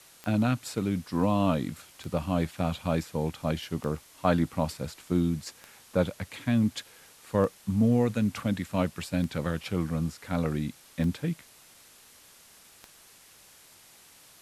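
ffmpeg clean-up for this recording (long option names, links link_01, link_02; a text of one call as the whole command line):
ffmpeg -i in.wav -af "adeclick=threshold=4,afwtdn=0.0022" out.wav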